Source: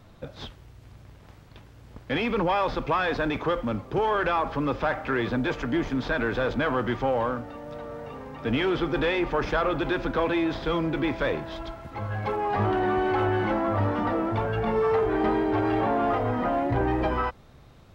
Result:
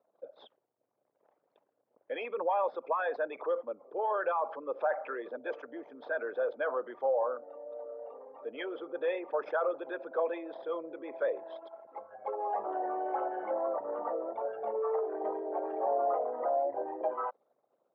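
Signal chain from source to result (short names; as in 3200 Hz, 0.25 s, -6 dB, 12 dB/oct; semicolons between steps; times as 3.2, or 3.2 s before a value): formant sharpening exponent 2; ladder high-pass 480 Hz, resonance 50%; mismatched tape noise reduction decoder only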